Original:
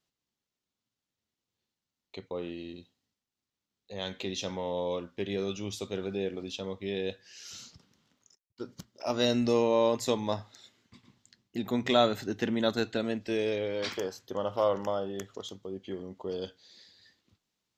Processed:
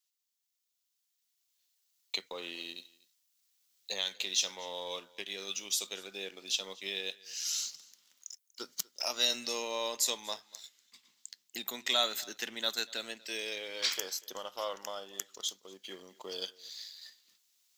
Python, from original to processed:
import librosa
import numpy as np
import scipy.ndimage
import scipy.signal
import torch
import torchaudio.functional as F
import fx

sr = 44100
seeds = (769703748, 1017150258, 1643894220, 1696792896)

y = fx.recorder_agc(x, sr, target_db=-19.0, rise_db_per_s=5.5, max_gain_db=30)
y = scipy.signal.sosfilt(scipy.signal.butter(4, 140.0, 'highpass', fs=sr, output='sos'), y)
y = np.diff(y, prepend=0.0)
y = fx.leveller(y, sr, passes=1)
y = y + 10.0 ** (-23.0 / 20.0) * np.pad(y, (int(241 * sr / 1000.0), 0))[:len(y)]
y = y * librosa.db_to_amplitude(6.0)